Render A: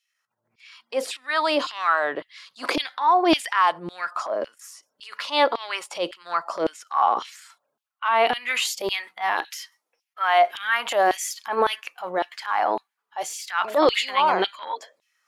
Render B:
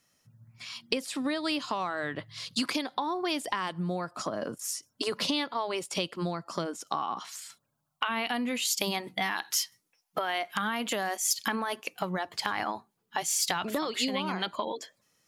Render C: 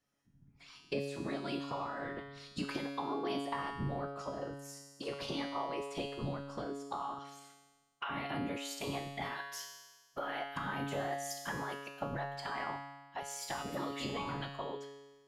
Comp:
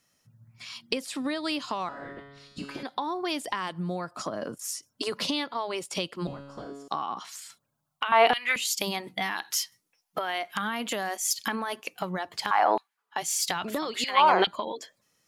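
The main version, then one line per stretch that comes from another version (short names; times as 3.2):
B
1.89–2.83 from C
6.27–6.88 from C
8.12–8.56 from A
12.51–13.16 from A
14.04–14.47 from A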